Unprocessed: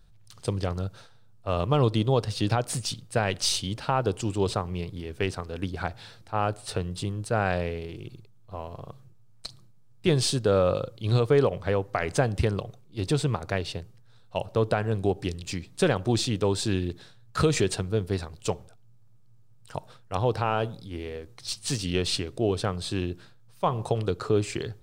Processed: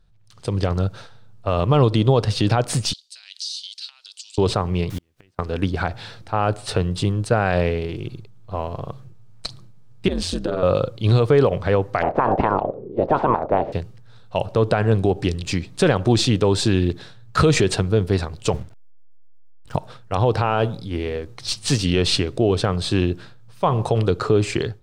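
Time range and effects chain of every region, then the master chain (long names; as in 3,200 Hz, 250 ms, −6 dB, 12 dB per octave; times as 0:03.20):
0:02.93–0:04.38: spectral tilt +4 dB per octave + downward compressor 12 to 1, threshold −26 dBFS + four-pole ladder band-pass 4,800 Hz, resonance 55%
0:04.90–0:05.39: parametric band 420 Hz −9.5 dB 0.24 octaves + bit-depth reduction 8 bits, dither triangular + gate with flip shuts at −28 dBFS, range −39 dB
0:10.08–0:10.63: downward compressor, threshold −27 dBFS + ring modulation 88 Hz
0:12.01–0:13.72: ceiling on every frequency bin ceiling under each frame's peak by 27 dB + envelope-controlled low-pass 350–1,000 Hz up, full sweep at −20.5 dBFS
0:18.53–0:19.76: hold until the input has moved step −51 dBFS + noise gate −48 dBFS, range −8 dB + bass and treble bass +8 dB, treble 0 dB
whole clip: high-shelf EQ 7,900 Hz −11 dB; brickwall limiter −17 dBFS; automatic gain control gain up to 12.5 dB; level −2 dB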